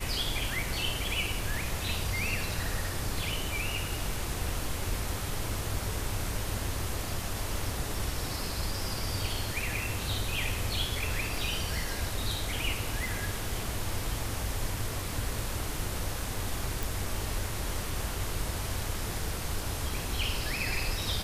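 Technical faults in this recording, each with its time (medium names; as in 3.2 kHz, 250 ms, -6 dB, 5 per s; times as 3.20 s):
16.83 s: pop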